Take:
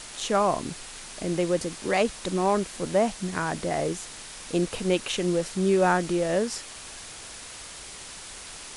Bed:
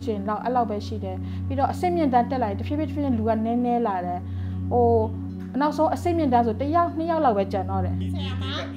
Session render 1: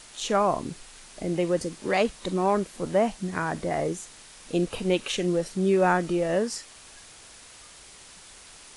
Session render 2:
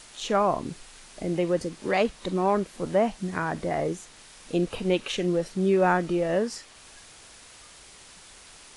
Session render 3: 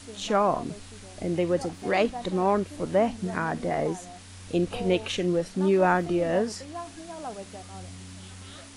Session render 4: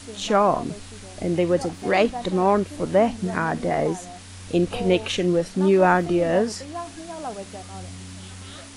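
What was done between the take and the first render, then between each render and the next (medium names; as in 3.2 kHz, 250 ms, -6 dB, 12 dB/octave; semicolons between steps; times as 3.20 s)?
noise print and reduce 7 dB
dynamic bell 9.1 kHz, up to -6 dB, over -50 dBFS, Q 0.71
add bed -17 dB
trim +4.5 dB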